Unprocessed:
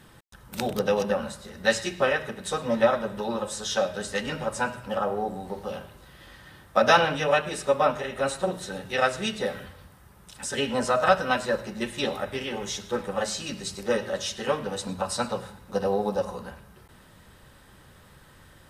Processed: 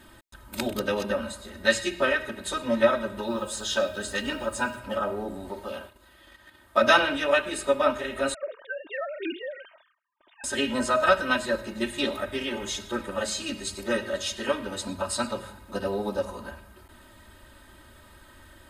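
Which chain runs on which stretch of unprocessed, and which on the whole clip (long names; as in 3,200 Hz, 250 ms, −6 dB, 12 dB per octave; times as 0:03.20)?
0:03.27–0:04.79: notch filter 2,100 Hz, Q 9.6 + bit-depth reduction 10 bits, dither none
0:05.51–0:06.81: noise gate −47 dBFS, range −16 dB + low-shelf EQ 200 Hz −6 dB + upward compression, threshold −45 dBFS
0:08.34–0:10.44: three sine waves on the formant tracks + noise gate with hold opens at −53 dBFS, closes at −59 dBFS + downward compressor 5 to 1, threshold −29 dBFS
whole clip: notch filter 5,700 Hz, Q 8.3; dynamic equaliser 760 Hz, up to −5 dB, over −36 dBFS, Q 1.4; comb filter 3.2 ms, depth 89%; level −1 dB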